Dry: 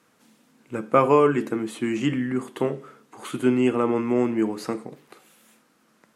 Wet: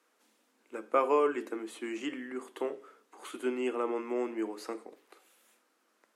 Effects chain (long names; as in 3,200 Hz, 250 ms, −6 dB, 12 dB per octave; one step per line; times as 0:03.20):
high-pass filter 310 Hz 24 dB per octave
level −8.5 dB